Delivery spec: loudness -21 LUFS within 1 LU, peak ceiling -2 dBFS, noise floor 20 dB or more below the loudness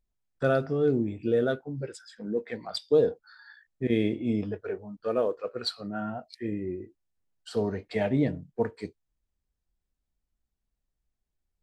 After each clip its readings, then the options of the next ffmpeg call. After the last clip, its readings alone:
loudness -29.5 LUFS; peak -11.5 dBFS; loudness target -21.0 LUFS
-> -af "volume=8.5dB"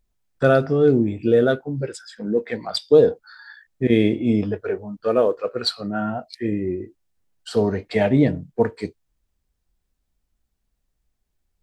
loudness -21.0 LUFS; peak -3.0 dBFS; noise floor -74 dBFS

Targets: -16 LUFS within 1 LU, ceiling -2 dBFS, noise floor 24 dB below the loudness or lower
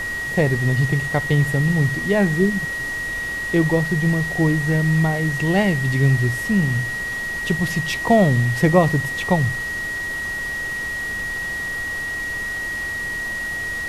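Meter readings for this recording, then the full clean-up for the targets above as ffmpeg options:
steady tone 1900 Hz; tone level -24 dBFS; noise floor -27 dBFS; noise floor target -45 dBFS; loudness -20.5 LUFS; peak -2.5 dBFS; loudness target -16.0 LUFS
-> -af "bandreject=f=1.9k:w=30"
-af "afftdn=nr=18:nf=-27"
-af "volume=4.5dB,alimiter=limit=-2dB:level=0:latency=1"

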